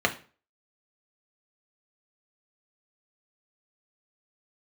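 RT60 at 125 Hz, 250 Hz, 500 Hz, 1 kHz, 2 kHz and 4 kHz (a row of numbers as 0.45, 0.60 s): 0.40, 0.40, 0.40, 0.40, 0.35, 0.35 s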